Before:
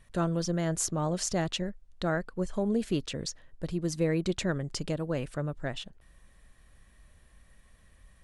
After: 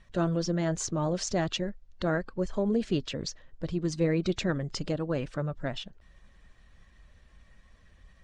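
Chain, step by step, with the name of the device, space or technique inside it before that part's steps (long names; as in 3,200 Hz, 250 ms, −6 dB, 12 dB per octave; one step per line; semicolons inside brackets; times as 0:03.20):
clip after many re-uploads (low-pass filter 6,600 Hz 24 dB per octave; spectral magnitudes quantised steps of 15 dB)
level +1.5 dB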